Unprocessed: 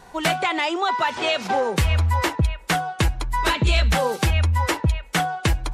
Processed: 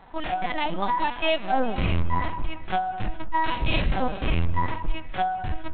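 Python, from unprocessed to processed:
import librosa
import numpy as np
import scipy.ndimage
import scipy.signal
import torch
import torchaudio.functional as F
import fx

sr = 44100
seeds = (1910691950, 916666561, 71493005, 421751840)

y = fx.lpc_vocoder(x, sr, seeds[0], excitation='pitch_kept', order=8)
y = fx.hpss(y, sr, part='percussive', gain_db=-16)
y = fx.echo_alternate(y, sr, ms=205, hz=1400.0, feedback_pct=55, wet_db=-13.5)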